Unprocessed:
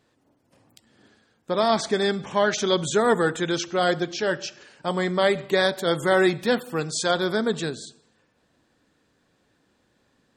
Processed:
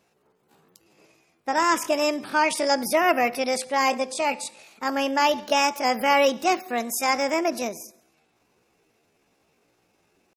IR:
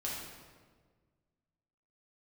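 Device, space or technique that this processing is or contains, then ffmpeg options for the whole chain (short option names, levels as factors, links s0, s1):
chipmunk voice: -af "asetrate=66075,aresample=44100,atempo=0.66742"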